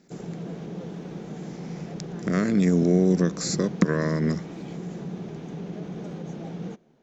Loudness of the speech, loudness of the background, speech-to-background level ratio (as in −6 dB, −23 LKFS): −23.5 LKFS, −36.0 LKFS, 12.5 dB